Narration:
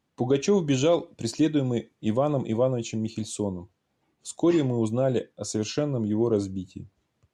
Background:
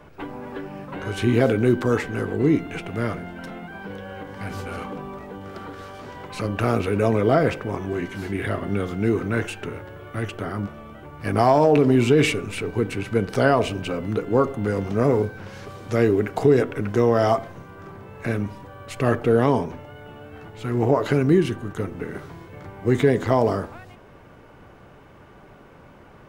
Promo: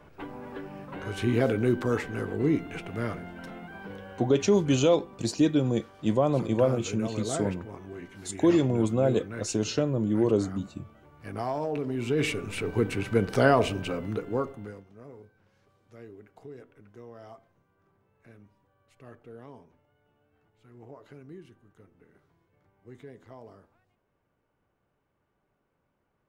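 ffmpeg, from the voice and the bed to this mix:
-filter_complex "[0:a]adelay=4000,volume=0dB[a];[1:a]volume=6dB,afade=t=out:st=3.91:d=0.57:silence=0.375837,afade=t=in:st=11.96:d=0.77:silence=0.251189,afade=t=out:st=13.65:d=1.2:silence=0.0501187[b];[a][b]amix=inputs=2:normalize=0"

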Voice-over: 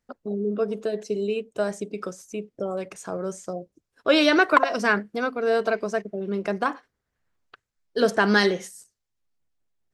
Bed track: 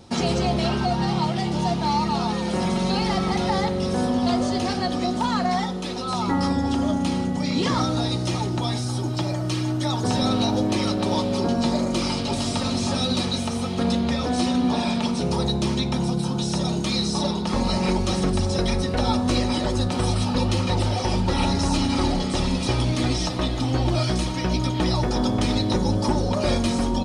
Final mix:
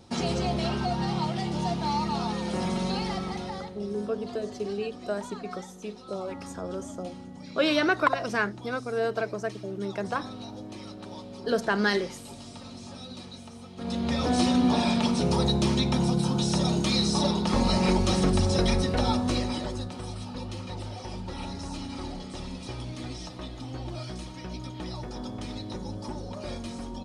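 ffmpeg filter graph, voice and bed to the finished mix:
-filter_complex "[0:a]adelay=3500,volume=-5.5dB[a];[1:a]volume=12dB,afade=t=out:st=2.81:d=0.94:silence=0.223872,afade=t=in:st=13.76:d=0.53:silence=0.133352,afade=t=out:st=18.69:d=1.28:silence=0.211349[b];[a][b]amix=inputs=2:normalize=0"

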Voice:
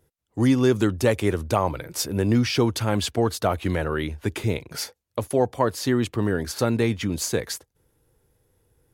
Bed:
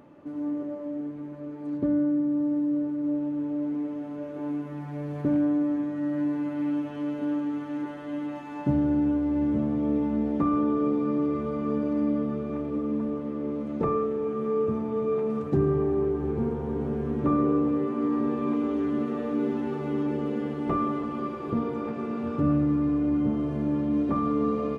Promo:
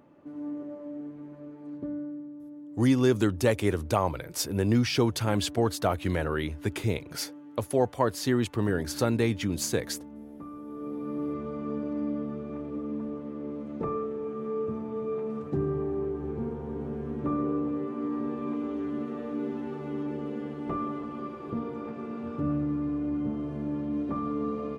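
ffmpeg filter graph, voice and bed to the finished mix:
-filter_complex "[0:a]adelay=2400,volume=-3.5dB[a];[1:a]volume=7dB,afade=t=out:st=1.37:d=0.99:silence=0.237137,afade=t=in:st=10.64:d=0.66:silence=0.237137[b];[a][b]amix=inputs=2:normalize=0"

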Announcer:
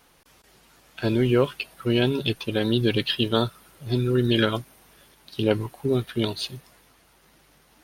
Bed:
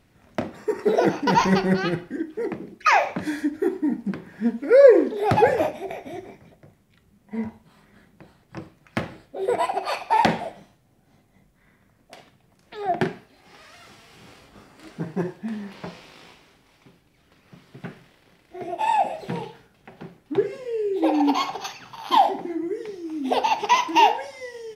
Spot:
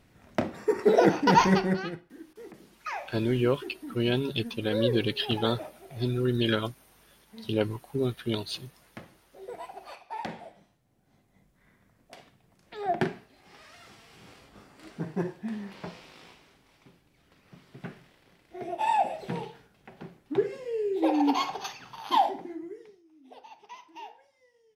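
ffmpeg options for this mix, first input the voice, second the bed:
-filter_complex "[0:a]adelay=2100,volume=-5dB[a];[1:a]volume=13.5dB,afade=t=out:st=1.34:d=0.68:silence=0.133352,afade=t=in:st=10.22:d=1.47:silence=0.199526,afade=t=out:st=21.96:d=1.08:silence=0.0630957[b];[a][b]amix=inputs=2:normalize=0"

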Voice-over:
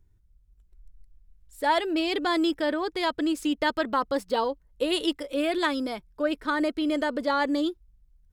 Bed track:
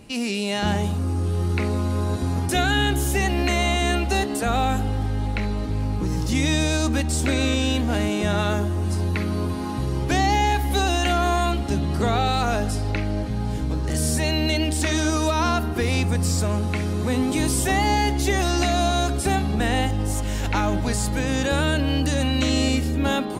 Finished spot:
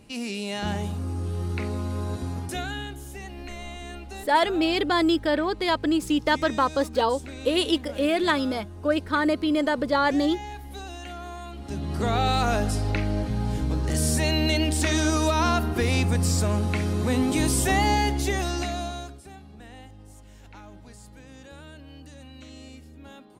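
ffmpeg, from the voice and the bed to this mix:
-filter_complex "[0:a]adelay=2650,volume=3dB[a];[1:a]volume=10dB,afade=t=out:st=2.15:d=0.82:silence=0.281838,afade=t=in:st=11.52:d=0.78:silence=0.158489,afade=t=out:st=17.83:d=1.38:silence=0.0749894[b];[a][b]amix=inputs=2:normalize=0"

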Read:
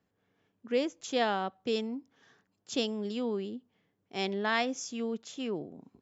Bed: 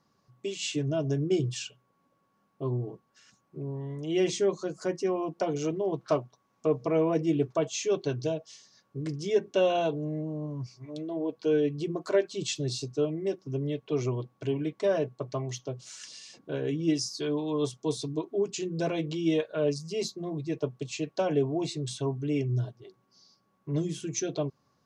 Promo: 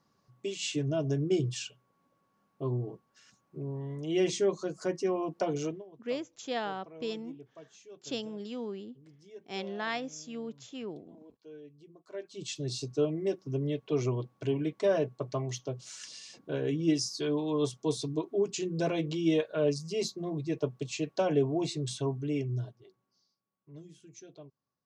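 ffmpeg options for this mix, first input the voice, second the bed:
-filter_complex "[0:a]adelay=5350,volume=-5dB[a];[1:a]volume=21.5dB,afade=t=out:st=5.6:d=0.25:silence=0.0794328,afade=t=in:st=12.08:d=0.88:silence=0.0707946,afade=t=out:st=21.92:d=1.44:silence=0.112202[b];[a][b]amix=inputs=2:normalize=0"

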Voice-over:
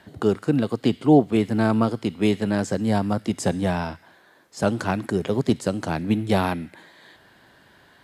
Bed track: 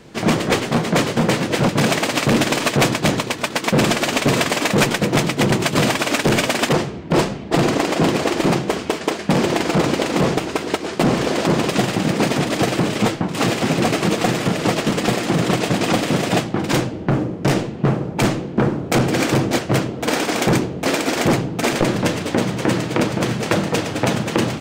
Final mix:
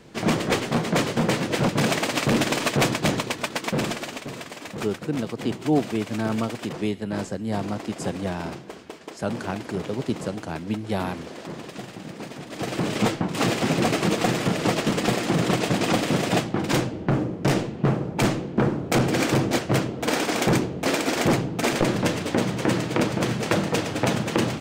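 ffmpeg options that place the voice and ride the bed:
-filter_complex "[0:a]adelay=4600,volume=-6dB[a];[1:a]volume=9.5dB,afade=t=out:st=3.34:d=0.93:silence=0.211349,afade=t=in:st=12.48:d=0.51:silence=0.188365[b];[a][b]amix=inputs=2:normalize=0"

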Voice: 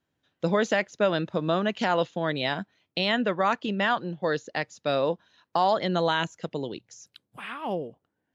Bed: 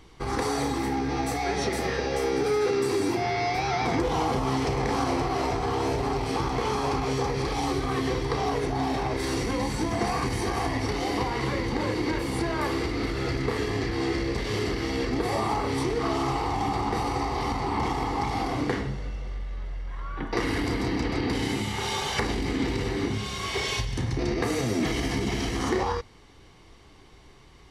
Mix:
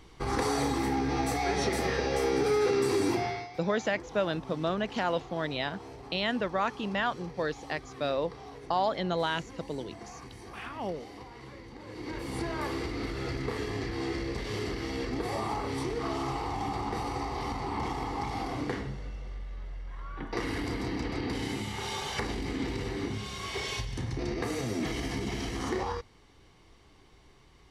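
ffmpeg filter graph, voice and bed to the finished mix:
-filter_complex "[0:a]adelay=3150,volume=-5dB[a];[1:a]volume=11.5dB,afade=t=out:st=3.14:d=0.34:silence=0.133352,afade=t=in:st=11.85:d=0.54:silence=0.223872[b];[a][b]amix=inputs=2:normalize=0"

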